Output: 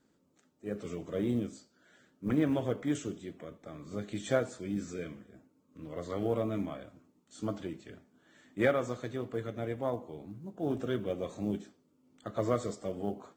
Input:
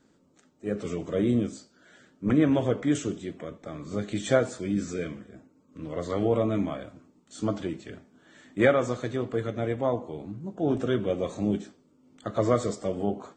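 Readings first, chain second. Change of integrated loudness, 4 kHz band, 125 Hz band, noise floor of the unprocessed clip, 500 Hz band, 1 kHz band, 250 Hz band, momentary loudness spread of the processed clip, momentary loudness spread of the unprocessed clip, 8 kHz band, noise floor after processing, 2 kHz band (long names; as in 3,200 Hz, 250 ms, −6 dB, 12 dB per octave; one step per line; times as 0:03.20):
−7.0 dB, −7.0 dB, −7.0 dB, −64 dBFS, −7.0 dB, −6.5 dB, −7.0 dB, 16 LU, 16 LU, −7.5 dB, −71 dBFS, −6.5 dB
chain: log-companded quantiser 8 bits
harmonic generator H 7 −36 dB, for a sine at −8 dBFS
level −6.5 dB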